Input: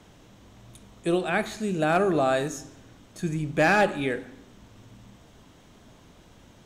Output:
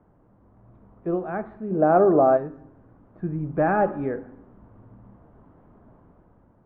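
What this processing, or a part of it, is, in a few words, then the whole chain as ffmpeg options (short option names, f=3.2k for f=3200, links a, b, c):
action camera in a waterproof case: -filter_complex "[0:a]asplit=3[a][b][c];[a]afade=t=out:st=1.7:d=0.02[d];[b]equalizer=f=510:w=0.44:g=10.5,afade=t=in:st=1.7:d=0.02,afade=t=out:st=2.36:d=0.02[e];[c]afade=t=in:st=2.36:d=0.02[f];[d][e][f]amix=inputs=3:normalize=0,lowpass=f=1.3k:w=0.5412,lowpass=f=1.3k:w=1.3066,dynaudnorm=f=170:g=9:m=6.5dB,volume=-5.5dB" -ar 24000 -c:a aac -b:a 48k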